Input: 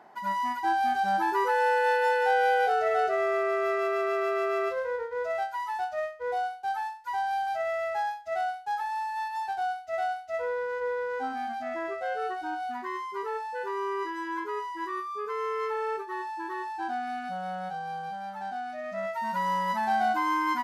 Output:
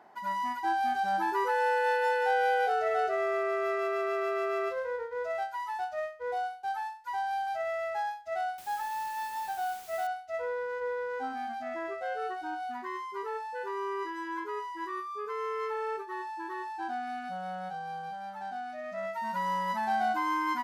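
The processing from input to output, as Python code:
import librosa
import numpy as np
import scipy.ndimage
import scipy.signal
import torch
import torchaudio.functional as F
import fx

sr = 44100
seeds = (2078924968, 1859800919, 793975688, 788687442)

y = fx.hum_notches(x, sr, base_hz=50, count=4)
y = fx.quant_dither(y, sr, seeds[0], bits=8, dither='triangular', at=(8.58, 10.07))
y = y * librosa.db_to_amplitude(-3.0)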